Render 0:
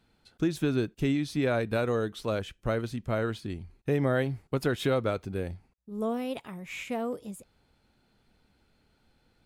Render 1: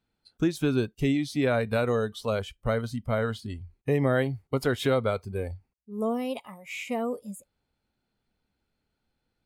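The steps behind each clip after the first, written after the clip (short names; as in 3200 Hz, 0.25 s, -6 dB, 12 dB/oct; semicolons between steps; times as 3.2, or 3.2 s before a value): spectral noise reduction 14 dB; gain +2.5 dB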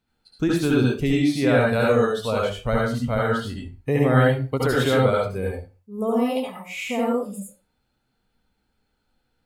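reverb RT60 0.30 s, pre-delay 62 ms, DRR -3.5 dB; gain +2 dB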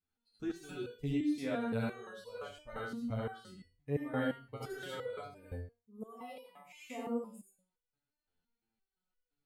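stepped resonator 5.8 Hz 88–490 Hz; gain -7 dB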